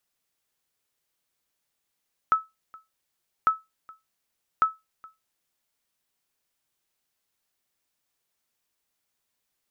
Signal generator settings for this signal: sonar ping 1300 Hz, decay 0.20 s, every 1.15 s, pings 3, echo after 0.42 s, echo -25.5 dB -12 dBFS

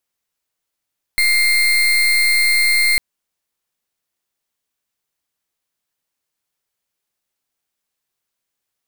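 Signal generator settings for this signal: pulse 2110 Hz, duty 33% -14.5 dBFS 1.80 s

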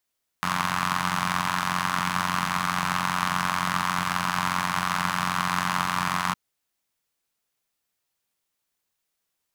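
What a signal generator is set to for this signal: four-cylinder engine model, steady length 5.91 s, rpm 2700, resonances 170/1100 Hz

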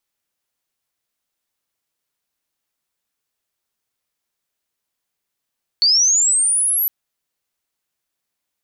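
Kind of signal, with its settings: chirp linear 4400 Hz -> 12000 Hz -10.5 dBFS -> -15.5 dBFS 1.06 s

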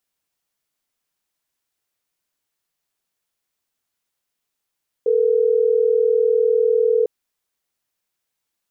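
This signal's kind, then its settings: call progress tone ringback tone, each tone -16.5 dBFS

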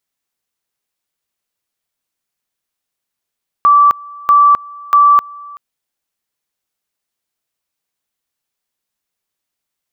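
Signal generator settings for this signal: two-level tone 1160 Hz -4.5 dBFS, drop 24.5 dB, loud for 0.26 s, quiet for 0.38 s, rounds 3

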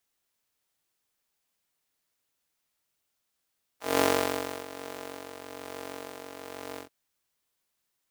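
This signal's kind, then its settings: synth patch with tremolo F#2, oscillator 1 square, sub -0.5 dB, noise -14.5 dB, filter highpass, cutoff 310 Hz, Q 1.3, filter envelope 1.5 oct, filter decay 0.06 s, filter sustain 35%, attack 0.194 s, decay 0.67 s, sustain -17 dB, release 0.11 s, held 2.98 s, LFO 1.1 Hz, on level 4 dB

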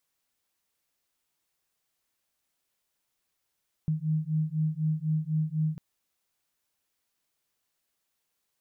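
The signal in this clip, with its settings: beating tones 154 Hz, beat 4 Hz, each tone -28.5 dBFS 1.90 s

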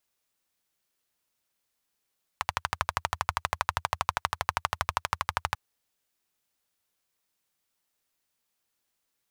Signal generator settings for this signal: single-cylinder engine model, steady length 3.14 s, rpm 1500, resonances 84/1000 Hz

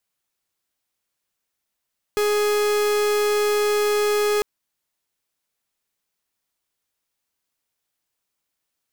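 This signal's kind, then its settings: pulse 417 Hz, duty 44% -20 dBFS 2.25 s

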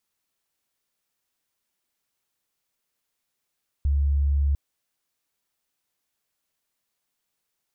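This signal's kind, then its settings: tone sine 70.7 Hz -18.5 dBFS 0.70 s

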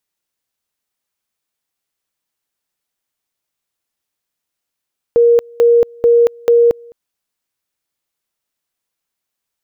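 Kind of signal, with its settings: two-level tone 471 Hz -6 dBFS, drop 28.5 dB, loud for 0.23 s, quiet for 0.21 s, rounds 4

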